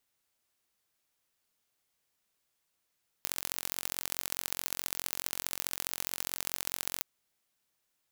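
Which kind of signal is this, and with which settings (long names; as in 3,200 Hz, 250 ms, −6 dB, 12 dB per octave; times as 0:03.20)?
impulse train 44.7 per second, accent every 3, −4.5 dBFS 3.77 s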